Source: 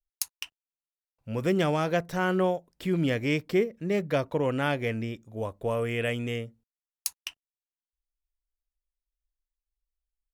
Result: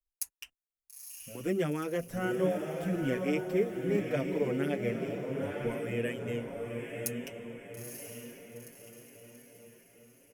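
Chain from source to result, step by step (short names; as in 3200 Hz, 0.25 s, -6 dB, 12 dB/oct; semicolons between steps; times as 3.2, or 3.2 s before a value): graphic EQ 125/1000/4000 Hz -5/-10/-12 dB; diffused feedback echo 0.924 s, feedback 47%, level -4 dB; endless flanger 6.5 ms +2.7 Hz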